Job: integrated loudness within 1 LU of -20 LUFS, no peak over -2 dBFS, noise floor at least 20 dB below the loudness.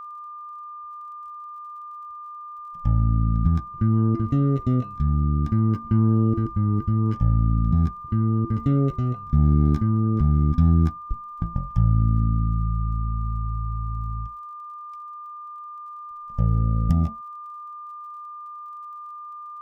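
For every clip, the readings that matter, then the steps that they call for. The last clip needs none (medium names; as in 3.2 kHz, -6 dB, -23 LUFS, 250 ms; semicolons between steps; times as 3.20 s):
tick rate 37 per s; steady tone 1.2 kHz; tone level -35 dBFS; loudness -22.5 LUFS; peak level -8.5 dBFS; loudness target -20.0 LUFS
-> de-click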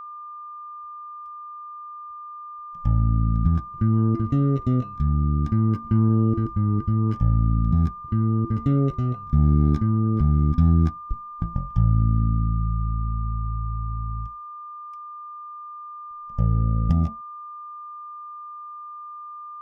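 tick rate 0.41 per s; steady tone 1.2 kHz; tone level -35 dBFS
-> band-stop 1.2 kHz, Q 30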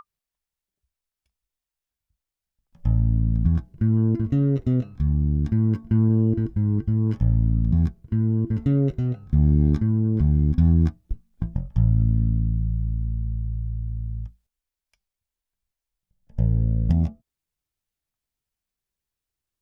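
steady tone not found; loudness -23.0 LUFS; peak level -8.5 dBFS; loudness target -20.0 LUFS
-> trim +3 dB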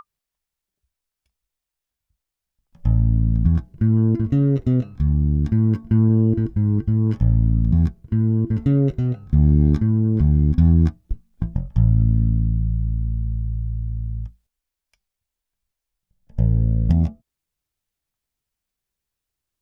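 loudness -20.0 LUFS; peak level -5.5 dBFS; noise floor -85 dBFS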